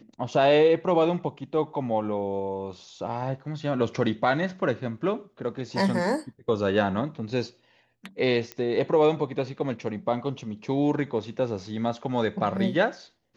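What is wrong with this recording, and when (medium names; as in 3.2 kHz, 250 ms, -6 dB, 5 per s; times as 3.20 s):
8.52 s: pop -18 dBFS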